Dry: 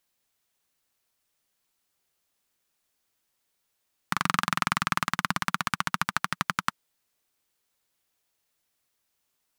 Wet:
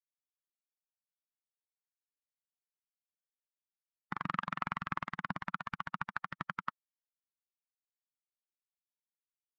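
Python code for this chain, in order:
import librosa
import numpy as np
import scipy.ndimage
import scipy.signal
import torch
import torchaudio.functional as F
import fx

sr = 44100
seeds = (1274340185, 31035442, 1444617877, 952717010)

y = fx.bin_expand(x, sr, power=2.0)
y = scipy.signal.sosfilt(scipy.signal.butter(2, 2000.0, 'lowpass', fs=sr, output='sos'), y)
y = y * 10.0 ** (-5.0 / 20.0)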